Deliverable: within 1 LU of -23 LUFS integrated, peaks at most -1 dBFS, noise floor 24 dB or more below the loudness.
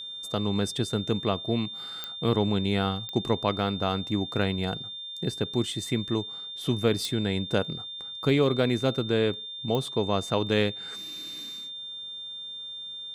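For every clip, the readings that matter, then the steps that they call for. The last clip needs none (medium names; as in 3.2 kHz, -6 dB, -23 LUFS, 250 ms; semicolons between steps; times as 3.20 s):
clicks found 4; steady tone 3.6 kHz; tone level -36 dBFS; loudness -28.5 LUFS; peak level -10.0 dBFS; loudness target -23.0 LUFS
-> de-click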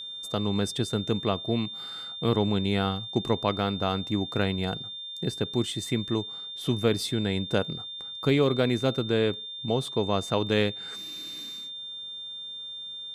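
clicks found 0; steady tone 3.6 kHz; tone level -36 dBFS
-> band-stop 3.6 kHz, Q 30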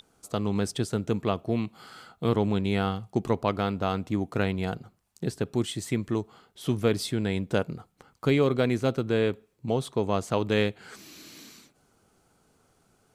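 steady tone not found; loudness -28.5 LUFS; peak level -10.5 dBFS; loudness target -23.0 LUFS
-> trim +5.5 dB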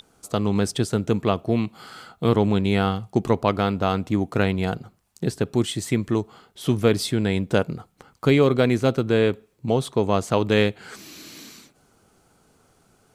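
loudness -23.0 LUFS; peak level -5.0 dBFS; noise floor -62 dBFS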